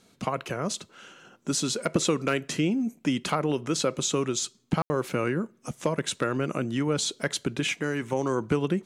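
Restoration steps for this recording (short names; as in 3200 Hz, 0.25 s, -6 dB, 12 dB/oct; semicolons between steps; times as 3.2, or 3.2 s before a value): clip repair -13 dBFS; room tone fill 4.82–4.9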